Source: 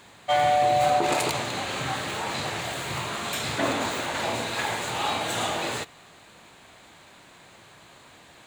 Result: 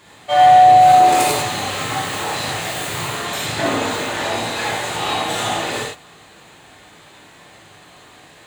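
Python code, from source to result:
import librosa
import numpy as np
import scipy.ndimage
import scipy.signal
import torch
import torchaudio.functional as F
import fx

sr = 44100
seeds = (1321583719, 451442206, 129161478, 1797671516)

y = fx.high_shelf(x, sr, hz=9800.0, db=10.0, at=(0.87, 3.16))
y = fx.rev_gated(y, sr, seeds[0], gate_ms=130, shape='flat', drr_db=-5.0)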